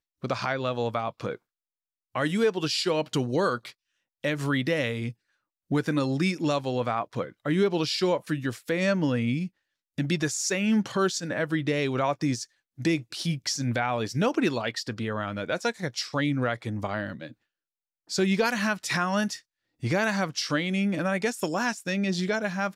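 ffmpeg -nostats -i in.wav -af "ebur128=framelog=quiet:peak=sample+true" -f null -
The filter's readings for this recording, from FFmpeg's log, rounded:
Integrated loudness:
  I:         -27.6 LUFS
  Threshold: -37.8 LUFS
Loudness range:
  LRA:         2.1 LU
  Threshold: -48.0 LUFS
  LRA low:   -29.1 LUFS
  LRA high:  -27.0 LUFS
Sample peak:
  Peak:      -13.6 dBFS
True peak:
  Peak:      -13.5 dBFS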